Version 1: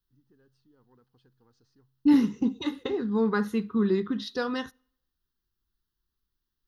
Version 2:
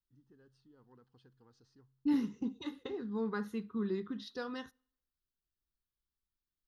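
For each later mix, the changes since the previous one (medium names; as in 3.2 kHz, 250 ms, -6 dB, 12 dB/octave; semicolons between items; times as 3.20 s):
second voice -11.0 dB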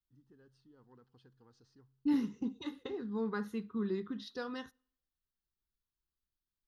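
first voice: send +8.5 dB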